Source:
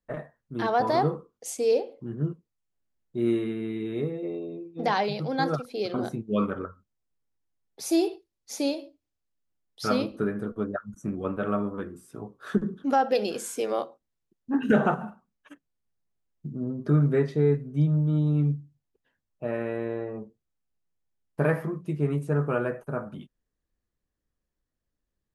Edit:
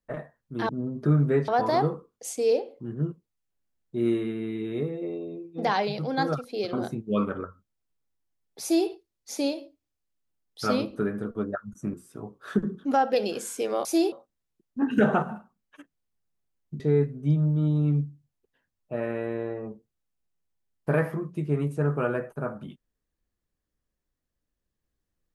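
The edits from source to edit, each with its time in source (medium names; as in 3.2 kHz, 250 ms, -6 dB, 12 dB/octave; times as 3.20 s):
7.83–8.10 s: copy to 13.84 s
11.15–11.93 s: delete
16.52–17.31 s: move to 0.69 s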